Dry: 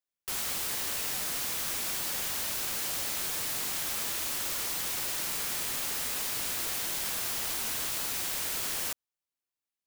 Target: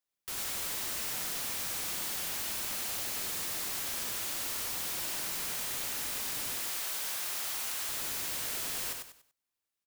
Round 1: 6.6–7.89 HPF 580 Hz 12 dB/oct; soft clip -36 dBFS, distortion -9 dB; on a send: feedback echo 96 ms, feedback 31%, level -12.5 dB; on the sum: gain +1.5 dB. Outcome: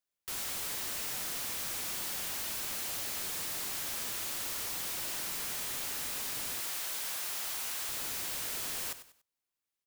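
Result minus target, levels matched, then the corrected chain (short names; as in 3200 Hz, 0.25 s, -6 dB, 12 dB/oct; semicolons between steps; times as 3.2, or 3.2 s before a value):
echo-to-direct -8.5 dB
6.6–7.89 HPF 580 Hz 12 dB/oct; soft clip -36 dBFS, distortion -9 dB; on a send: feedback echo 96 ms, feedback 31%, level -4 dB; on the sum: gain +1.5 dB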